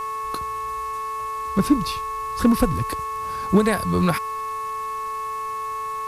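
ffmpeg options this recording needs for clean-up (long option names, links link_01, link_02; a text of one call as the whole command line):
ffmpeg -i in.wav -af "adeclick=threshold=4,bandreject=frequency=437.4:width_type=h:width=4,bandreject=frequency=874.8:width_type=h:width=4,bandreject=frequency=1312.2:width_type=h:width=4,bandreject=frequency=1749.6:width_type=h:width=4,bandreject=frequency=2187:width_type=h:width=4,bandreject=frequency=2624.4:width_type=h:width=4,bandreject=frequency=1100:width=30,afwtdn=0.0045" out.wav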